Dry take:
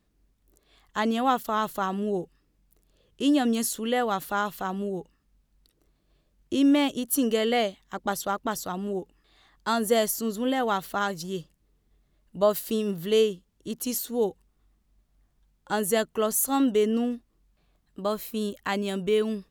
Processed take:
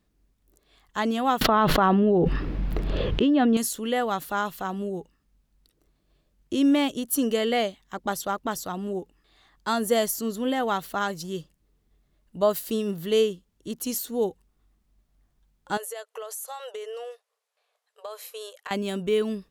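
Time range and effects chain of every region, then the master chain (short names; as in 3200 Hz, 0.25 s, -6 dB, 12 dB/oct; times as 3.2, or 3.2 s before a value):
1.41–3.57 air absorption 350 m + fast leveller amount 100%
15.77–18.71 brick-wall FIR band-pass 420–13000 Hz + compressor 12:1, threshold -32 dBFS
whole clip: dry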